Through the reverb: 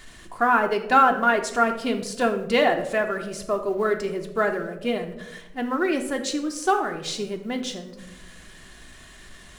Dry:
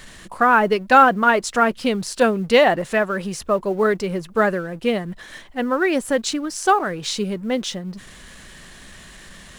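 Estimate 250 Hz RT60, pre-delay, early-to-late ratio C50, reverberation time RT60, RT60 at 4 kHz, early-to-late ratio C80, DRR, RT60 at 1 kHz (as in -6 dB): 1.3 s, 3 ms, 10.0 dB, 1.1 s, 0.50 s, 12.5 dB, 4.0 dB, 0.80 s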